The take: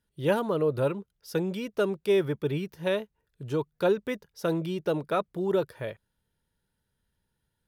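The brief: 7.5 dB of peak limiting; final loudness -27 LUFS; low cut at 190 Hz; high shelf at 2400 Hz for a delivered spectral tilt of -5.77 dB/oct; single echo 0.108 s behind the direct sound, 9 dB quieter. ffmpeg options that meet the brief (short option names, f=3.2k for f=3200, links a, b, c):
-af "highpass=190,highshelf=f=2.4k:g=-5,alimiter=limit=-21dB:level=0:latency=1,aecho=1:1:108:0.355,volume=5dB"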